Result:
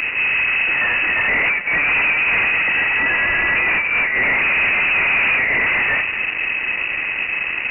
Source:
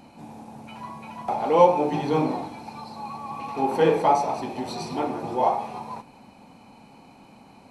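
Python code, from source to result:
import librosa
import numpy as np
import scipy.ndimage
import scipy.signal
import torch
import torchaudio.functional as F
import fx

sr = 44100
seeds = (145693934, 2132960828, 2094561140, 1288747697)

y = fx.wiener(x, sr, points=25)
y = fx.over_compress(y, sr, threshold_db=-28.0, ratio=-0.5)
y = fx.fuzz(y, sr, gain_db=46.0, gate_db=-52.0)
y = fx.rev_schroeder(y, sr, rt60_s=3.4, comb_ms=27, drr_db=12.5)
y = fx.freq_invert(y, sr, carrier_hz=2800)
y = y * 10.0 ** (-3.0 / 20.0)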